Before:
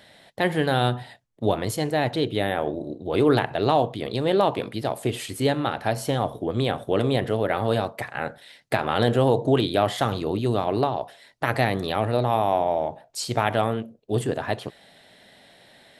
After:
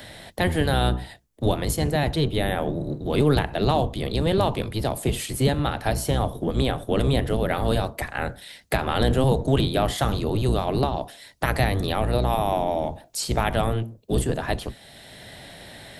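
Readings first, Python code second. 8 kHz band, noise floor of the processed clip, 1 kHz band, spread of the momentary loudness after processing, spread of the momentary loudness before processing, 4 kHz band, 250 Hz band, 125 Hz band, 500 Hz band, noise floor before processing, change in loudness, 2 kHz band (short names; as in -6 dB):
+4.5 dB, -49 dBFS, -1.5 dB, 10 LU, 9 LU, +1.5 dB, +0.5 dB, +3.5 dB, -1.5 dB, -54 dBFS, 0.0 dB, -0.5 dB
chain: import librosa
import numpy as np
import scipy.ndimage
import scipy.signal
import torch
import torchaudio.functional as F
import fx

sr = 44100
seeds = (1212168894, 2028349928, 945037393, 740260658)

y = fx.octave_divider(x, sr, octaves=1, level_db=4.0)
y = fx.high_shelf(y, sr, hz=5200.0, db=10.0)
y = fx.band_squash(y, sr, depth_pct=40)
y = y * librosa.db_to_amplitude(-2.0)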